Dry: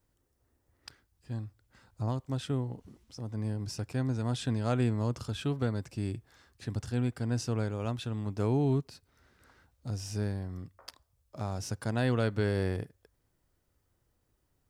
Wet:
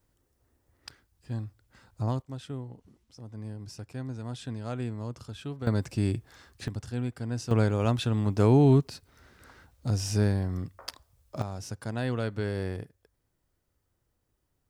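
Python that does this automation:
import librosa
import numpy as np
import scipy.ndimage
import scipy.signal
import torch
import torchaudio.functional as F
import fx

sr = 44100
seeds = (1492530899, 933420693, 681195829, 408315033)

y = fx.gain(x, sr, db=fx.steps((0.0, 3.0), (2.22, -5.5), (5.67, 7.0), (6.68, -1.5), (7.51, 8.0), (11.42, -2.0)))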